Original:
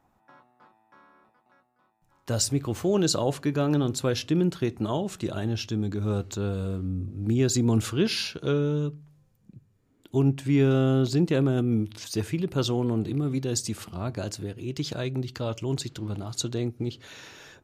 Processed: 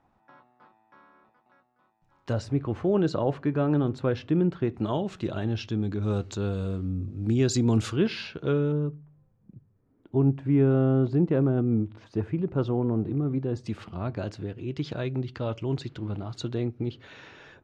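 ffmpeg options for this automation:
-af "asetnsamples=n=441:p=0,asendcmd='2.33 lowpass f 1900;4.74 lowpass f 3600;6.03 lowpass f 6200;7.96 lowpass f 2500;8.72 lowpass f 1300;13.66 lowpass f 2800',lowpass=4.2k"

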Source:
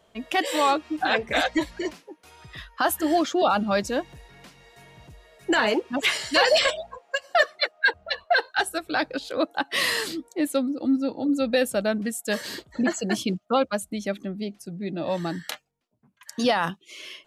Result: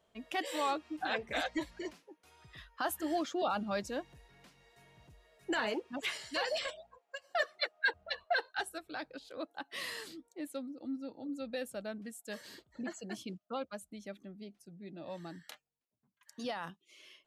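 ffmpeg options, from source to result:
-af "volume=-2dB,afade=t=out:st=5.55:d=1.52:silence=0.398107,afade=t=in:st=7.07:d=0.55:silence=0.316228,afade=t=out:st=8.2:d=0.78:silence=0.446684"

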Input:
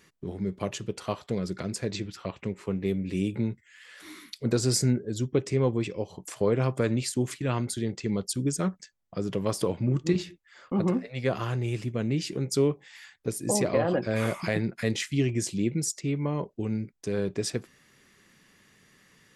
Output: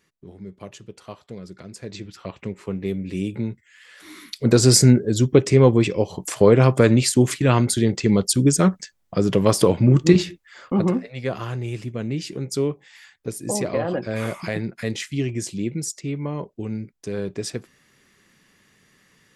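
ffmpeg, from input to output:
-af "volume=11dB,afade=t=in:st=1.7:d=0.69:silence=0.354813,afade=t=in:st=4.08:d=0.56:silence=0.354813,afade=t=out:st=10.17:d=1:silence=0.316228"

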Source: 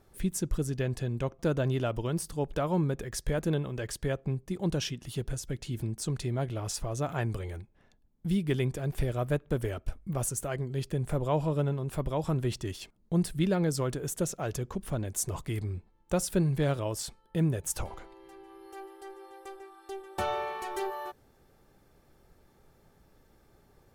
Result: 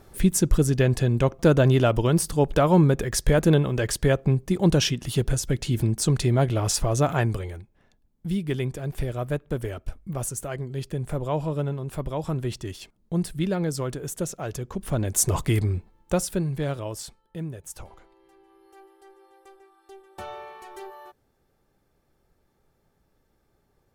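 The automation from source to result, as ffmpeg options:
-af "volume=21dB,afade=t=out:st=7:d=0.57:silence=0.354813,afade=t=in:st=14.68:d=0.73:silence=0.298538,afade=t=out:st=15.41:d=0.99:silence=0.251189,afade=t=out:st=16.96:d=0.48:silence=0.473151"

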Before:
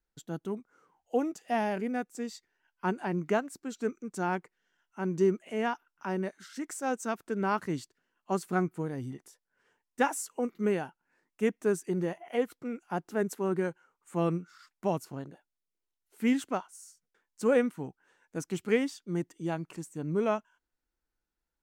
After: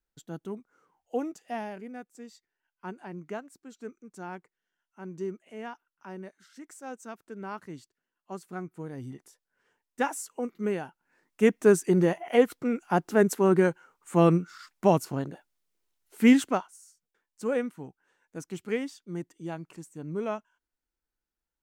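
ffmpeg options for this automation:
-af "volume=15.5dB,afade=t=out:st=1.27:d=0.51:silence=0.446684,afade=t=in:st=8.63:d=0.48:silence=0.398107,afade=t=in:st=10.83:d=0.86:silence=0.334965,afade=t=out:st=16.34:d=0.45:silence=0.251189"

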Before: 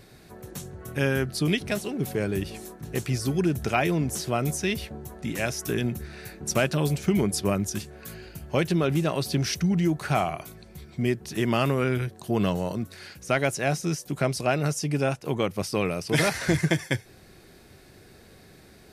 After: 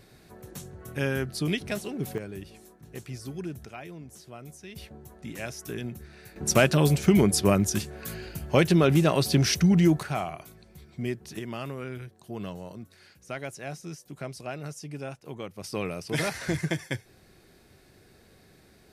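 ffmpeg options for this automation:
-af "asetnsamples=n=441:p=0,asendcmd='2.18 volume volume -11.5dB;3.65 volume volume -18dB;4.76 volume volume -8dB;6.36 volume volume 3.5dB;10.03 volume volume -6dB;11.39 volume volume -12dB;15.64 volume volume -5.5dB',volume=-3.5dB"

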